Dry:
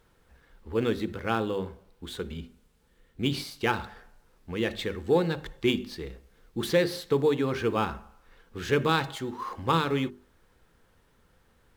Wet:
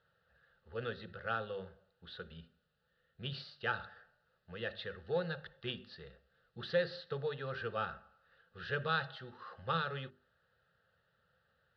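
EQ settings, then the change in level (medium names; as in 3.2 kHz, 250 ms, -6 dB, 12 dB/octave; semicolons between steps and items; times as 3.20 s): cabinet simulation 150–4200 Hz, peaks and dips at 210 Hz -6 dB, 300 Hz -9 dB, 430 Hz -7 dB, 750 Hz -8 dB, 3.3 kHz -7 dB; static phaser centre 1.5 kHz, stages 8; -3.5 dB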